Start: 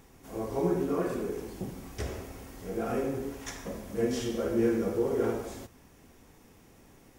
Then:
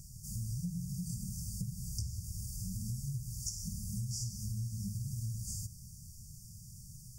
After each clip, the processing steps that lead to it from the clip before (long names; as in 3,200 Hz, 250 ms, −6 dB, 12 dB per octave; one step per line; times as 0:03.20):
brick-wall band-stop 220–4,500 Hz
graphic EQ with 10 bands 125 Hz +9 dB, 250 Hz −10 dB, 500 Hz −11 dB, 8,000 Hz +7 dB
downward compressor 6 to 1, threshold −42 dBFS, peak gain reduction 13 dB
level +6.5 dB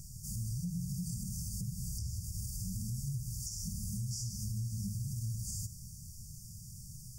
brickwall limiter −32 dBFS, peak gain reduction 9.5 dB
tuned comb filter 330 Hz, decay 0.92 s, mix 70%
level +12.5 dB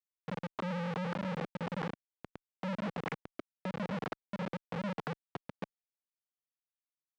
three sine waves on the formant tracks
comparator with hysteresis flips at −37.5 dBFS
band-pass filter 200–2,800 Hz
level +7 dB